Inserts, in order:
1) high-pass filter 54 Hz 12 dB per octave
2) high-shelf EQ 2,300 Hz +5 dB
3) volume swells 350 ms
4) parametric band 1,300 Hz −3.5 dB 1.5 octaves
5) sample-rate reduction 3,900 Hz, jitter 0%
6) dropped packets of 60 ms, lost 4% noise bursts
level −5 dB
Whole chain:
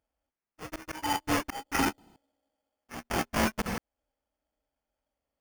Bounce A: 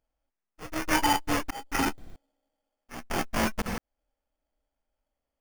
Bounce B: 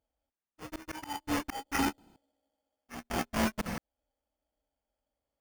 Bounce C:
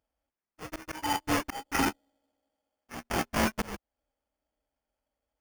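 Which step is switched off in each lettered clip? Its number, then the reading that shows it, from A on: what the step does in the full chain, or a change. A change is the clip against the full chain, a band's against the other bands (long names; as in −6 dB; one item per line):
1, 125 Hz band −1.5 dB
2, 250 Hz band +2.5 dB
6, change in momentary loudness spread +1 LU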